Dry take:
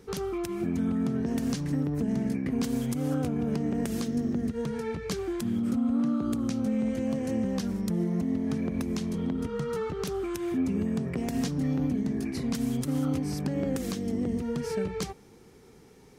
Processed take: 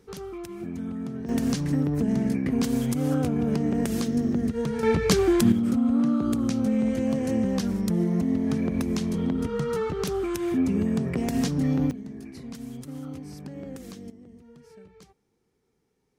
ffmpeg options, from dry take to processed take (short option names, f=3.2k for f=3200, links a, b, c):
-af "asetnsamples=n=441:p=0,asendcmd='1.29 volume volume 4dB;4.83 volume volume 11.5dB;5.52 volume volume 4dB;11.91 volume volume -9dB;14.1 volume volume -19.5dB',volume=-5dB"